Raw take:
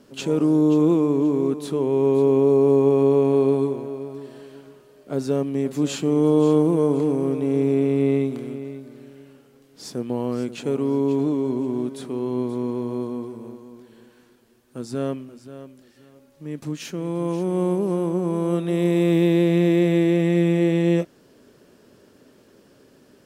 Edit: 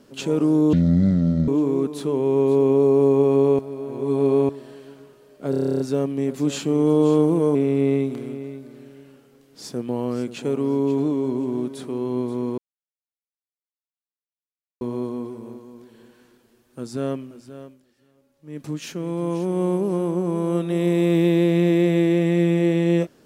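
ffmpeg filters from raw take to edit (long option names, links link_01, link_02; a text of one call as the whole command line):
ffmpeg -i in.wav -filter_complex "[0:a]asplit=19[link_01][link_02][link_03][link_04][link_05][link_06][link_07][link_08][link_09][link_10][link_11][link_12][link_13][link_14][link_15][link_16][link_17][link_18][link_19];[link_01]atrim=end=0.734[link_20];[link_02]atrim=start=0.73:end=1.15,asetpts=PTS-STARTPTS,asetrate=24696,aresample=44100[link_21];[link_03]atrim=start=1.146:end=3.262[link_22];[link_04]atrim=start=3.258:end=4.162,asetpts=PTS-STARTPTS,areverse[link_23];[link_05]atrim=start=4.158:end=5.202[link_24];[link_06]atrim=start=5.168:end=5.202[link_25];[link_07]atrim=start=5.168:end=5.202[link_26];[link_08]atrim=start=5.168:end=5.202[link_27];[link_09]atrim=start=5.168:end=5.202[link_28];[link_10]atrim=start=5.168:end=5.202[link_29];[link_11]atrim=start=5.168:end=5.202[link_30];[link_12]atrim=start=5.168:end=5.202[link_31];[link_13]atrim=start=5.168:end=5.202[link_32];[link_14]atrim=start=5.168:end=5.202[link_33];[link_15]atrim=start=5.168:end=6.922[link_34];[link_16]atrim=start=7.758:end=12.79,asetpts=PTS-STARTPTS,afade=type=out:start_time=5.028:duration=0.004:curve=hsin,apad=pad_dur=2.23[link_35];[link_17]atrim=start=12.79:end=15.8,asetpts=PTS-STARTPTS,afade=type=in:duration=0.004:curve=hsin,afade=type=out:start_time=2.81:duration=0.2:silence=0.316228[link_36];[link_18]atrim=start=15.8:end=16.41,asetpts=PTS-STARTPTS,volume=-10dB[link_37];[link_19]atrim=start=16.41,asetpts=PTS-STARTPTS,afade=type=in:duration=0.2:silence=0.316228[link_38];[link_20][link_21]acrossfade=duration=0.004:curve1=hsin:curve2=hsin[link_39];[link_39][link_22]acrossfade=duration=0.004:curve1=hsin:curve2=hsin[link_40];[link_40][link_23]acrossfade=duration=0.004:curve1=hsin:curve2=hsin[link_41];[link_41][link_24]acrossfade=duration=0.004:curve1=hsin:curve2=hsin[link_42];[link_42][link_25]acrossfade=duration=0.004:curve1=hsin:curve2=hsin[link_43];[link_43][link_26]acrossfade=duration=0.004:curve1=hsin:curve2=hsin[link_44];[link_44][link_27]acrossfade=duration=0.004:curve1=hsin:curve2=hsin[link_45];[link_45][link_28]acrossfade=duration=0.004:curve1=hsin:curve2=hsin[link_46];[link_46][link_29]acrossfade=duration=0.004:curve1=hsin:curve2=hsin[link_47];[link_47][link_30]acrossfade=duration=0.004:curve1=hsin:curve2=hsin[link_48];[link_48][link_31]acrossfade=duration=0.004:curve1=hsin:curve2=hsin[link_49];[link_49][link_32]acrossfade=duration=0.004:curve1=hsin:curve2=hsin[link_50];[link_50][link_33]acrossfade=duration=0.004:curve1=hsin:curve2=hsin[link_51];[link_51][link_34]acrossfade=duration=0.004:curve1=hsin:curve2=hsin[link_52];[link_35][link_36][link_37][link_38]concat=n=4:v=0:a=1[link_53];[link_52][link_53]acrossfade=duration=0.004:curve1=hsin:curve2=hsin" out.wav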